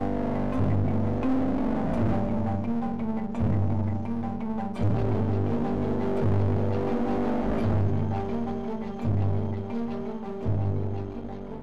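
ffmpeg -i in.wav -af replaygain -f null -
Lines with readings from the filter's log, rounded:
track_gain = +11.7 dB
track_peak = 0.103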